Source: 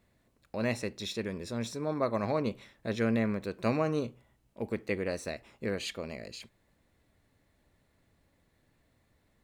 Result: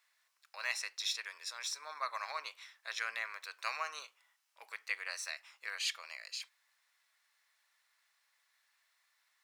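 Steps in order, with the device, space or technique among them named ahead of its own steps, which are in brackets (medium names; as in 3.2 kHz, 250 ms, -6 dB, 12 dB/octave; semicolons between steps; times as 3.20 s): headphones lying on a table (high-pass 1.1 kHz 24 dB/octave; peaking EQ 5.4 kHz +6 dB 0.41 oct); trim +1.5 dB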